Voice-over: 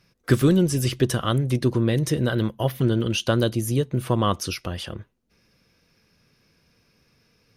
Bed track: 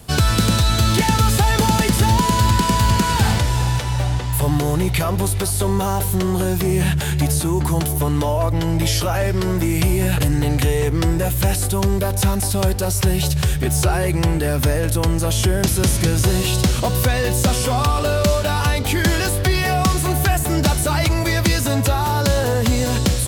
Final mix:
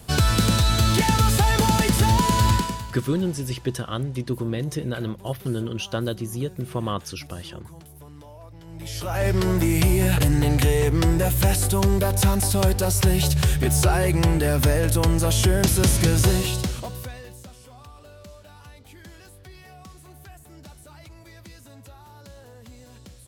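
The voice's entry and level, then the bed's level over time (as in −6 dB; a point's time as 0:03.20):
2.65 s, −5.5 dB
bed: 0:02.54 −3 dB
0:02.98 −25.5 dB
0:08.61 −25.5 dB
0:09.27 −1.5 dB
0:16.29 −1.5 dB
0:17.53 −28 dB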